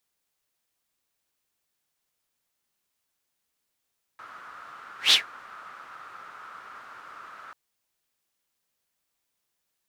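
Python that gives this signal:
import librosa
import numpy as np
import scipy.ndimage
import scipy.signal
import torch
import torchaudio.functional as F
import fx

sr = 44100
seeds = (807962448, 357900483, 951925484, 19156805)

y = fx.whoosh(sr, seeds[0], length_s=3.34, peak_s=0.93, rise_s=0.14, fall_s=0.14, ends_hz=1300.0, peak_hz=3800.0, q=6.0, swell_db=29.5)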